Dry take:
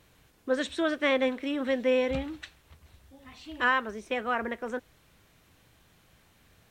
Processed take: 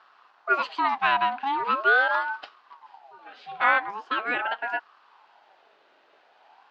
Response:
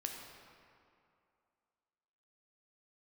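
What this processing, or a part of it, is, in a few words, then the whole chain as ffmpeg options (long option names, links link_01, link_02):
voice changer toy: -af "aeval=exprs='val(0)*sin(2*PI*830*n/s+830*0.45/0.42*sin(2*PI*0.42*n/s))':channel_layout=same,highpass=500,equalizer=frequency=520:width_type=q:width=4:gain=-5,equalizer=frequency=830:width_type=q:width=4:gain=5,equalizer=frequency=1500:width_type=q:width=4:gain=4,equalizer=frequency=2200:width_type=q:width=4:gain=-5,equalizer=frequency=3500:width_type=q:width=4:gain=-4,lowpass=frequency=4000:width=0.5412,lowpass=frequency=4000:width=1.3066,volume=7dB"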